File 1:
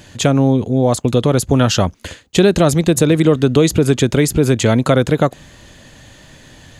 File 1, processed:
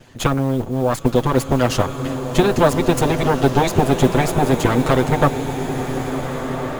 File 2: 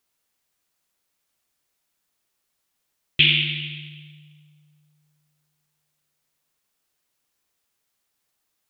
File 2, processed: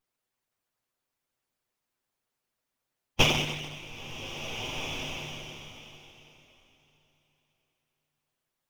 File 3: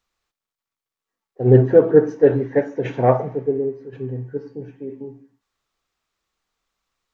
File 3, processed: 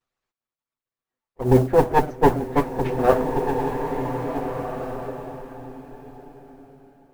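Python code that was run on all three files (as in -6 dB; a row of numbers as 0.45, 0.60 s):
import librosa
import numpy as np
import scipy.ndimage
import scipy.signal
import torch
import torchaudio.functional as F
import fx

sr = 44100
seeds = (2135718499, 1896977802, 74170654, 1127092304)

y = fx.lower_of_two(x, sr, delay_ms=7.9)
y = fx.high_shelf(y, sr, hz=2200.0, db=-9.0)
y = fx.hpss(y, sr, part='percussive', gain_db=9)
y = fx.mod_noise(y, sr, seeds[0], snr_db=29)
y = fx.rev_bloom(y, sr, seeds[1], attack_ms=1730, drr_db=6.0)
y = y * 10.0 ** (-6.5 / 20.0)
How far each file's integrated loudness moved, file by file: -4.0, -11.0, -5.0 LU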